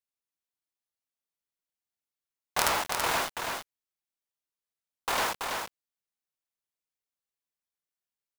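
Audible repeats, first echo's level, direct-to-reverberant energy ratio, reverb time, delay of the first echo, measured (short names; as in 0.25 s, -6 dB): 1, -5.0 dB, none, none, 0.33 s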